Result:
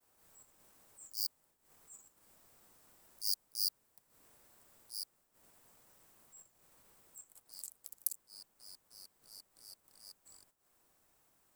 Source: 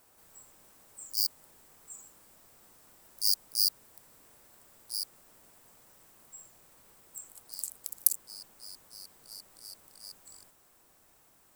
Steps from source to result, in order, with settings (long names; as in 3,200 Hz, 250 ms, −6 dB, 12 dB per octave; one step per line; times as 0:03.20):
transient designer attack −6 dB, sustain −10 dB
downward expander −60 dBFS
level −5.5 dB